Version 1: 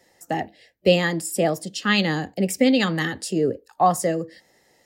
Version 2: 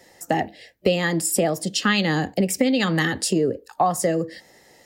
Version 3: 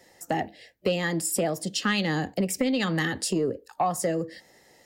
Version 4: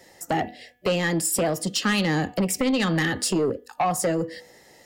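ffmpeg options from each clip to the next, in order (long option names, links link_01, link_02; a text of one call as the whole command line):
ffmpeg -i in.wav -af "acompressor=threshold=-25dB:ratio=5,volume=7.5dB" out.wav
ffmpeg -i in.wav -af "asoftclip=type=tanh:threshold=-9dB,volume=-4.5dB" out.wav
ffmpeg -i in.wav -af "bandreject=frequency=245.3:width_type=h:width=4,bandreject=frequency=490.6:width_type=h:width=4,bandreject=frequency=735.9:width_type=h:width=4,bandreject=frequency=981.2:width_type=h:width=4,bandreject=frequency=1226.5:width_type=h:width=4,bandreject=frequency=1471.8:width_type=h:width=4,bandreject=frequency=1717.1:width_type=h:width=4,bandreject=frequency=1962.4:width_type=h:width=4,bandreject=frequency=2207.7:width_type=h:width=4,bandreject=frequency=2453:width_type=h:width=4,bandreject=frequency=2698.3:width_type=h:width=4,bandreject=frequency=2943.6:width_type=h:width=4,bandreject=frequency=3188.9:width_type=h:width=4,bandreject=frequency=3434.2:width_type=h:width=4,aeval=exprs='0.188*sin(PI/2*1.58*val(0)/0.188)':channel_layout=same,volume=-3dB" out.wav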